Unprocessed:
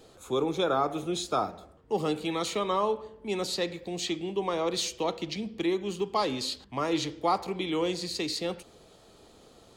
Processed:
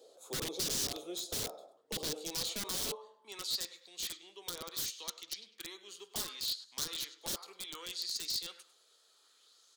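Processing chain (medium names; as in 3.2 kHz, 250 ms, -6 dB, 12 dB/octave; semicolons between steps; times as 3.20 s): high-pass sweep 630 Hz -> 1.4 kHz, 2.17–3.81 s; on a send: feedback delay 101 ms, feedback 26%, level -16 dB; on the sum: integer overflow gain 24.5 dB; high-order bell 1.3 kHz -12 dB 2.4 oct; sweeping bell 0.67 Hz 470–6300 Hz +6 dB; trim -5 dB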